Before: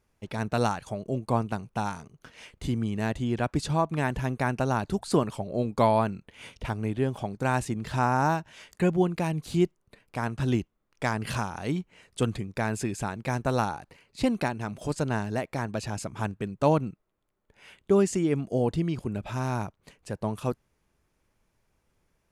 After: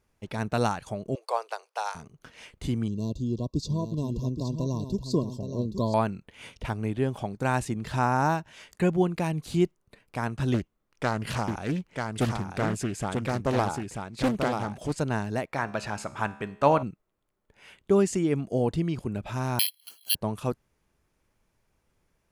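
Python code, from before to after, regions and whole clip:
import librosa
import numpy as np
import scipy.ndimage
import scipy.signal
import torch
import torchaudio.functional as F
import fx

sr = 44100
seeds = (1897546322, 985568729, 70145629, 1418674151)

y = fx.chain(x, sr, fx.steep_highpass(hz=460.0, slope=48),
    fx.peak_eq(hz=4800.0, db=9.5, octaves=0.36), at=(1.15, 1.95))
y = fx.chain(y, sr, fx.brickwall_bandstop(low_hz=1100.0, high_hz=2700.0),
    fx.fixed_phaser(hz=3000.0, stages=6),
    fx.echo_single(ms=821, db=-8.0), at=(2.88, 5.94))
y = fx.chain(y, sr, fx.echo_single(ms=939, db=-4.5),
    fx.doppler_dist(depth_ms=0.51), at=(10.54, 14.99))
y = fx.chain(y, sr, fx.peak_eq(hz=1400.0, db=11.5, octaves=2.7),
    fx.comb_fb(f0_hz=70.0, decay_s=0.76, harmonics='all', damping=0.0, mix_pct=50), at=(15.51, 16.83))
y = fx.chain(y, sr, fx.high_shelf(hz=2000.0, db=-10.0),
    fx.freq_invert(carrier_hz=3300),
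    fx.resample_bad(factor=6, down='none', up='zero_stuff'), at=(19.59, 20.15))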